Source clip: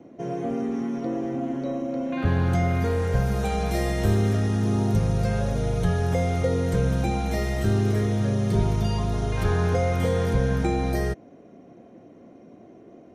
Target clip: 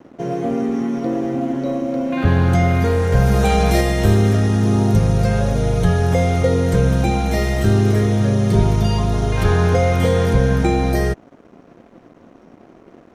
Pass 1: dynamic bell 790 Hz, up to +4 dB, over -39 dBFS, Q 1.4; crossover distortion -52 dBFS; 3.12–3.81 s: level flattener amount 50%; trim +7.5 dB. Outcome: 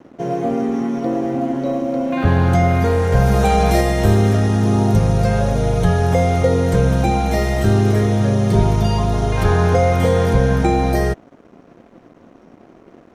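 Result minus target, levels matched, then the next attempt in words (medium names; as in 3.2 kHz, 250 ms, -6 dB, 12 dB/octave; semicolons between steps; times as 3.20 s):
1 kHz band +3.0 dB
dynamic bell 3.1 kHz, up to +4 dB, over -39 dBFS, Q 1.4; crossover distortion -52 dBFS; 3.12–3.81 s: level flattener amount 50%; trim +7.5 dB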